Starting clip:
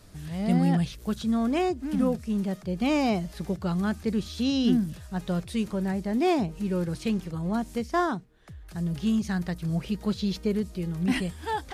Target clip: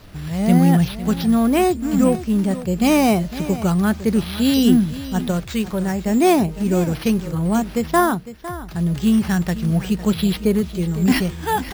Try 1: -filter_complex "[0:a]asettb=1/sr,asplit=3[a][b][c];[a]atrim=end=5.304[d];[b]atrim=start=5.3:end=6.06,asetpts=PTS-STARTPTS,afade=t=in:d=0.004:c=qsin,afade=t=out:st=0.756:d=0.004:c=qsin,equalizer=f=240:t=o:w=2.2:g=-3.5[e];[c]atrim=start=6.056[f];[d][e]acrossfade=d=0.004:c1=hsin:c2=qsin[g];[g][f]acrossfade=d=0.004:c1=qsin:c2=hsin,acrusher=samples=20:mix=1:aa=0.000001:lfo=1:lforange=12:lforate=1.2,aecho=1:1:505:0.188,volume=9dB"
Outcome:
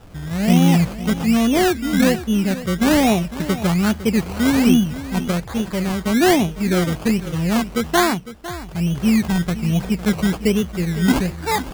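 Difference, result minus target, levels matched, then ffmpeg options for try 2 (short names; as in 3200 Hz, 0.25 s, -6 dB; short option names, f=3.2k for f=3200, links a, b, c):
decimation with a swept rate: distortion +10 dB
-filter_complex "[0:a]asettb=1/sr,asplit=3[a][b][c];[a]atrim=end=5.304[d];[b]atrim=start=5.3:end=6.06,asetpts=PTS-STARTPTS,afade=t=in:d=0.004:c=qsin,afade=t=out:st=0.756:d=0.004:c=qsin,equalizer=f=240:t=o:w=2.2:g=-3.5[e];[c]atrim=start=6.056[f];[d][e]acrossfade=d=0.004:c1=hsin:c2=qsin[g];[g][f]acrossfade=d=0.004:c1=qsin:c2=hsin,acrusher=samples=5:mix=1:aa=0.000001:lfo=1:lforange=3:lforate=1.2,aecho=1:1:505:0.188,volume=9dB"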